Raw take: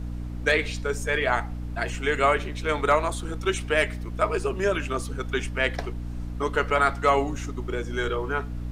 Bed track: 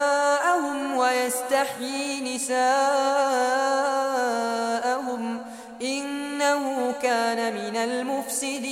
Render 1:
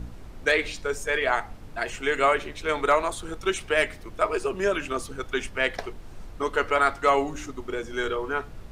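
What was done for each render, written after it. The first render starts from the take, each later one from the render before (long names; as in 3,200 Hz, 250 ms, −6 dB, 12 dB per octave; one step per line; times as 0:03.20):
hum removal 60 Hz, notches 5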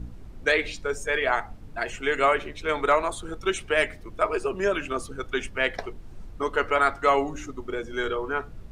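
broadband denoise 7 dB, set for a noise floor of −43 dBFS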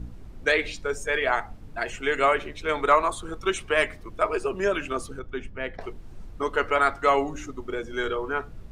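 0:02.90–0:04.09: parametric band 1,100 Hz +8 dB 0.23 octaves
0:05.19–0:05.81: drawn EQ curve 170 Hz 0 dB, 460 Hz −5 dB, 2,400 Hz −10 dB, 9,800 Hz −20 dB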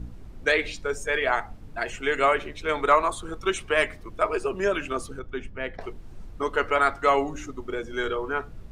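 no processing that can be heard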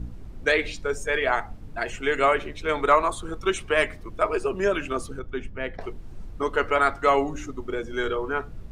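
low-shelf EQ 430 Hz +3 dB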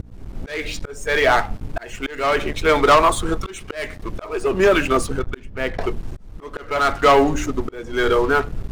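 leveller curve on the samples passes 3
volume swells 441 ms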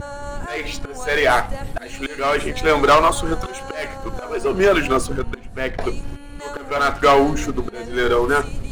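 mix in bed track −11.5 dB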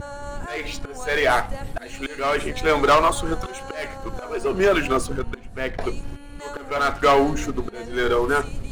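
level −3 dB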